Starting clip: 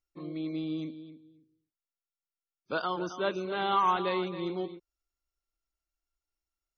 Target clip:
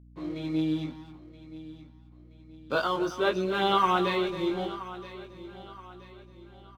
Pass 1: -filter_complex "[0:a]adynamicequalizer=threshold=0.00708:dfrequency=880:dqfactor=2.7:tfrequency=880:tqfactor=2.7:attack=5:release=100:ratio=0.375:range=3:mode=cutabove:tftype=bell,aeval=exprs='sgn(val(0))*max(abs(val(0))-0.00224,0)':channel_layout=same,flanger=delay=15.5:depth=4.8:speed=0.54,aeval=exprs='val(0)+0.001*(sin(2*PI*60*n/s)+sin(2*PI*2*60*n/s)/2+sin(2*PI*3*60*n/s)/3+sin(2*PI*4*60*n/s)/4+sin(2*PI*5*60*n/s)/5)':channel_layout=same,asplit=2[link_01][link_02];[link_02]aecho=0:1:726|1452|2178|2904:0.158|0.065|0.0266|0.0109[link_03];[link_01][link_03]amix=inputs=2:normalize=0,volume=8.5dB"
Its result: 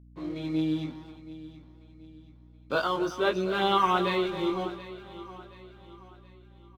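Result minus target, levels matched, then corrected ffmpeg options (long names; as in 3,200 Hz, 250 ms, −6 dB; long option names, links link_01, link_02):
echo 249 ms early
-filter_complex "[0:a]adynamicequalizer=threshold=0.00708:dfrequency=880:dqfactor=2.7:tfrequency=880:tqfactor=2.7:attack=5:release=100:ratio=0.375:range=3:mode=cutabove:tftype=bell,aeval=exprs='sgn(val(0))*max(abs(val(0))-0.00224,0)':channel_layout=same,flanger=delay=15.5:depth=4.8:speed=0.54,aeval=exprs='val(0)+0.001*(sin(2*PI*60*n/s)+sin(2*PI*2*60*n/s)/2+sin(2*PI*3*60*n/s)/3+sin(2*PI*4*60*n/s)/4+sin(2*PI*5*60*n/s)/5)':channel_layout=same,asplit=2[link_01][link_02];[link_02]aecho=0:1:975|1950|2925|3900:0.158|0.065|0.0266|0.0109[link_03];[link_01][link_03]amix=inputs=2:normalize=0,volume=8.5dB"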